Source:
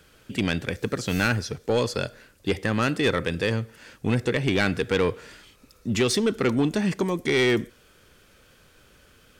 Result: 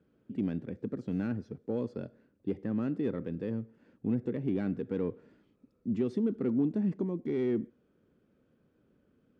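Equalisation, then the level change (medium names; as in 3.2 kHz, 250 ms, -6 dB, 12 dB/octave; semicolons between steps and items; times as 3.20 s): band-pass filter 240 Hz, Q 1.6; -3.5 dB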